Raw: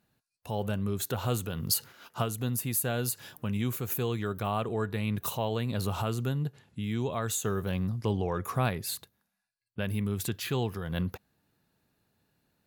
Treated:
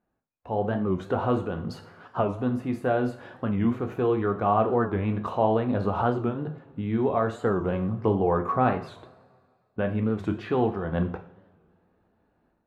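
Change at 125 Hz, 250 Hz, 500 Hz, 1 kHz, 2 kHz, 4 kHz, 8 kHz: +1.0 dB, +7.0 dB, +8.5 dB, +9.0 dB, +2.5 dB, −10.0 dB, below −25 dB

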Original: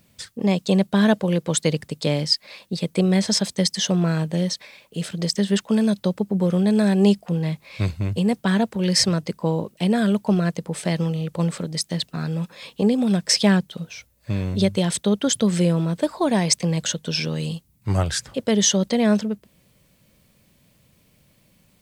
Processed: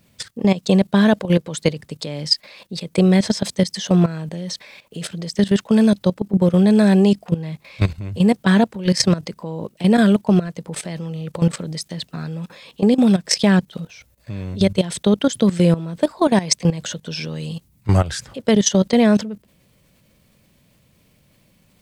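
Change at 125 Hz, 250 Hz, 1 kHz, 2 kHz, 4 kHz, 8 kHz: +2.5, +4.0, +3.5, +2.5, −0.5, −1.5 decibels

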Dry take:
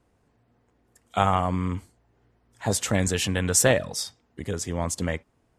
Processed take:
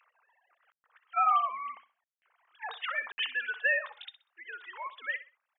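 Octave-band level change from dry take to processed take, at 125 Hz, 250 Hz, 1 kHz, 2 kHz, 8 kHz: below −40 dB, below −40 dB, −2.0 dB, +1.0 dB, below −40 dB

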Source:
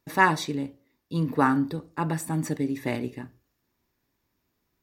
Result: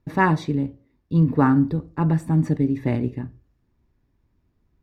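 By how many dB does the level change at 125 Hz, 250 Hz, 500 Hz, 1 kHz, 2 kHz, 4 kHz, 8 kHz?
+10.0 dB, +7.0 dB, +3.5 dB, 0.0 dB, −2.0 dB, can't be measured, below −10 dB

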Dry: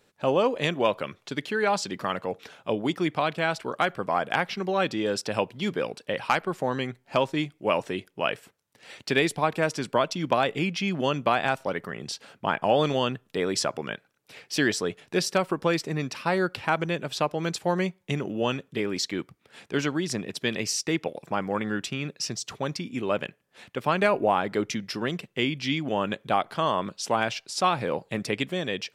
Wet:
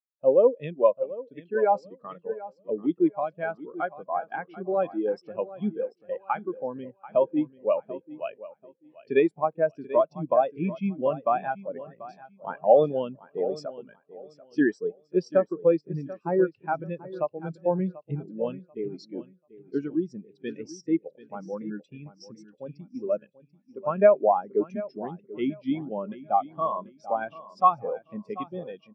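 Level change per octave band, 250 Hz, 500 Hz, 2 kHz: −1.0, +2.5, −11.0 decibels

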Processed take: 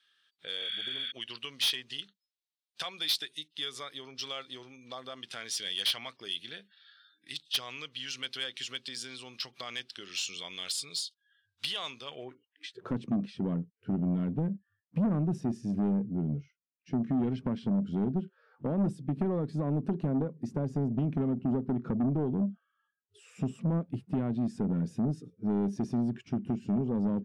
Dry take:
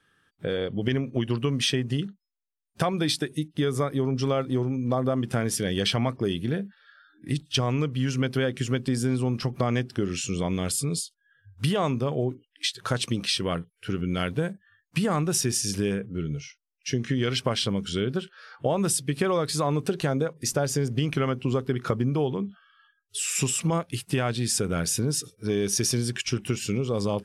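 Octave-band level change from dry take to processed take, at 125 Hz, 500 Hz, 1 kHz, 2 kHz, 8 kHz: −7.5, −11.5, −11.0, −9.0, −14.5 decibels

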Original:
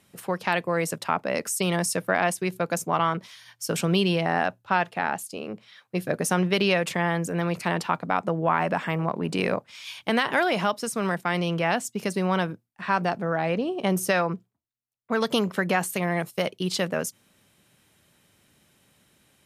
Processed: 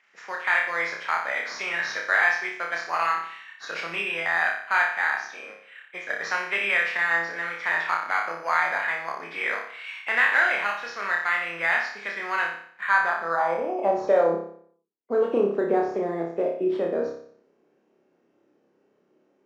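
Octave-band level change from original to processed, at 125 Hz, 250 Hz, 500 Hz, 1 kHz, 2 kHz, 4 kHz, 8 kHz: −18.5 dB, −8.5 dB, 0.0 dB, 0.0 dB, +6.5 dB, −5.5 dB, below −10 dB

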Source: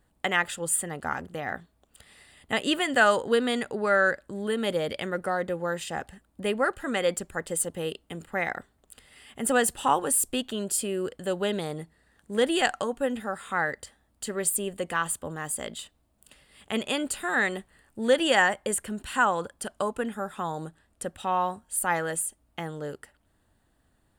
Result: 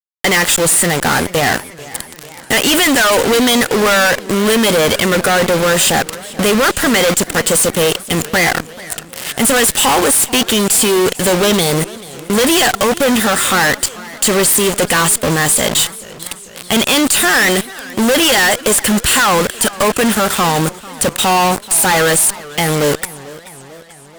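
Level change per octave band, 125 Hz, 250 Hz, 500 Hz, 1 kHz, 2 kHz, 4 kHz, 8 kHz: +19.0, +16.0, +13.5, +13.0, +14.0, +19.5, +18.0 decibels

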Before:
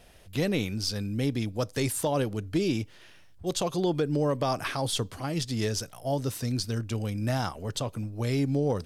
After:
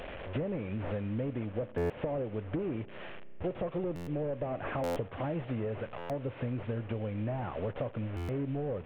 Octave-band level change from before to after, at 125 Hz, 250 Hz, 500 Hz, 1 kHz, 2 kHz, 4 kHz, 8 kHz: −6.0 dB, −6.5 dB, −4.0 dB, −7.0 dB, −7.0 dB, −19.5 dB, below −25 dB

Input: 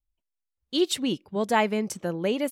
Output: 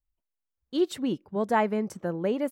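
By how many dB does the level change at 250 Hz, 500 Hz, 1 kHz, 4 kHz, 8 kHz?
−1.0, −1.0, −1.0, −11.0, −11.0 decibels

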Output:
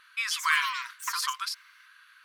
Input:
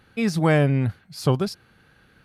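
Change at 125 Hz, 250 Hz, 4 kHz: below −40 dB, below −40 dB, +5.0 dB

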